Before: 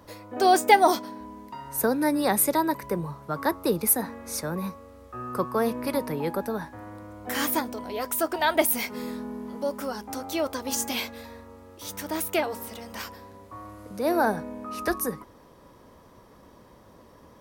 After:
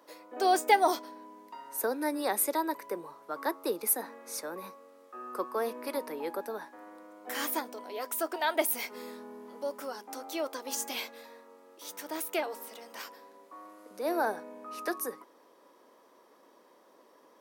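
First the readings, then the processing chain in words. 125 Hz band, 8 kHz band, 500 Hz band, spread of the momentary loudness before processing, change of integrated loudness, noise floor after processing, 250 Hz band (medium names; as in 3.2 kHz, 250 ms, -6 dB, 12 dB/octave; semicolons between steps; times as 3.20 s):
under -20 dB, -6.0 dB, -6.0 dB, 18 LU, -6.5 dB, -61 dBFS, -10.0 dB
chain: high-pass 300 Hz 24 dB/octave; trim -6 dB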